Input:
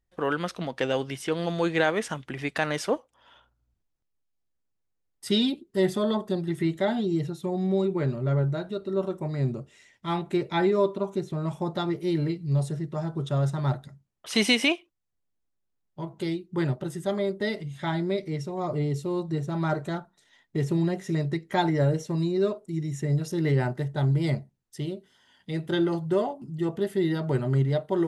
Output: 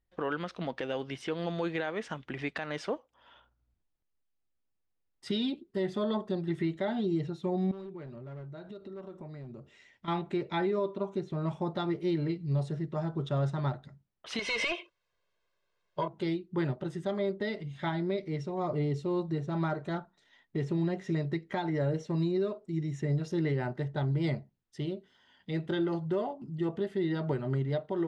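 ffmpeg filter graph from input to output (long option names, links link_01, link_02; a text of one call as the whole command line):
ffmpeg -i in.wav -filter_complex "[0:a]asettb=1/sr,asplit=3[link_01][link_02][link_03];[link_01]atrim=end=7.714[link_04];[link_02]atrim=start=7.71:end=10.08,asetpts=PTS-STARTPTS,afade=type=in:duration=0.004:curve=qsin,afade=type=out:start_time=2.366:duration=0.004:curve=qsin,volume=21dB,asoftclip=hard,volume=-21dB,acompressor=threshold=-39dB:ratio=6:attack=3.2:release=140:knee=1:detection=peak[link_05];[link_03]atrim=start=10.076[link_06];[link_04][link_05]acrossfade=duration=0.004:curve1=hsin:curve2=qsin[link_07];[link_07][link_06]acrossfade=duration=0.004:curve1=qsin:curve2=hsin,asettb=1/sr,asplit=3[link_08][link_09][link_10];[link_08]atrim=end=14.394[link_11];[link_09]atrim=start=14.39:end=16.08,asetpts=PTS-STARTPTS,afade=type=in:duration=0.004:curve=qsin,afade=type=out:start_time=1.686:duration=0.004:curve=qsin,asplit=2[link_12][link_13];[link_13]highpass=frequency=720:poles=1,volume=21dB,asoftclip=type=tanh:threshold=-7.5dB[link_14];[link_12][link_14]amix=inputs=2:normalize=0,lowpass=frequency=4800:poles=1,volume=-6dB,aecho=1:1:1.9:0.84,atrim=end_sample=74529,acompressor=threshold=-24dB:ratio=5:attack=3.2:release=140:knee=1:detection=peak[link_15];[link_10]atrim=start=16.076[link_16];[link_11][link_15]acrossfade=duration=0.004:curve1=hsin:curve2=qsin[link_17];[link_17][link_16]acrossfade=duration=0.004:curve1=qsin:curve2=hsin,lowpass=4300,equalizer=frequency=130:width_type=o:width=0.4:gain=-3,alimiter=limit=-20dB:level=0:latency=1:release=255,volume=-2dB" out.wav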